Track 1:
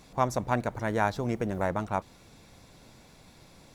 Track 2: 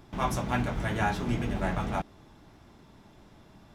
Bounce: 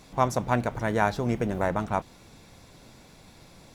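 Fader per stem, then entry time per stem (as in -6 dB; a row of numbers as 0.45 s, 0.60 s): +2.5 dB, -10.5 dB; 0.00 s, 0.00 s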